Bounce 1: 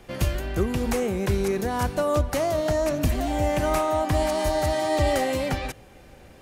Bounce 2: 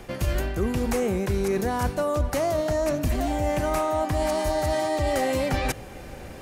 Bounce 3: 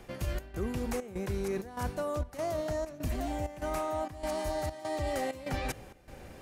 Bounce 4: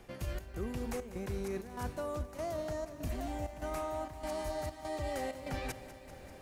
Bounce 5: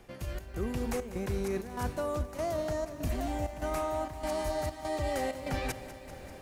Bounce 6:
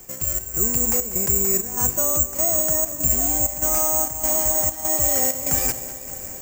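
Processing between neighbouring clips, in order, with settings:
peaking EQ 3.3 kHz -2.5 dB; reverse; compression 6:1, threshold -31 dBFS, peak gain reduction 13 dB; reverse; trim +9 dB
trance gate "xxxxx..x" 195 bpm -12 dB; trim -8.5 dB
bit-crushed delay 195 ms, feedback 80%, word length 10-bit, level -15 dB; trim -4.5 dB
level rider gain up to 5 dB
careless resampling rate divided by 6×, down filtered, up zero stuff; trim +4.5 dB

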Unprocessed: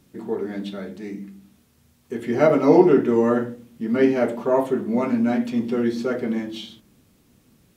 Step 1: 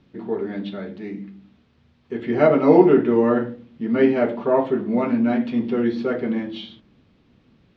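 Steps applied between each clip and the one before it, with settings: low-pass 4 kHz 24 dB/octave; trim +1 dB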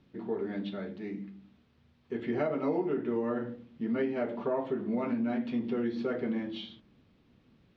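compression 6:1, threshold -21 dBFS, peak gain reduction 13.5 dB; trim -6.5 dB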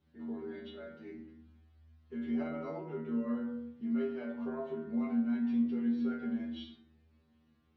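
inharmonic resonator 78 Hz, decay 0.77 s, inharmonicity 0.002; reverberation RT60 0.65 s, pre-delay 6 ms, DRR 4.5 dB; trim +4 dB

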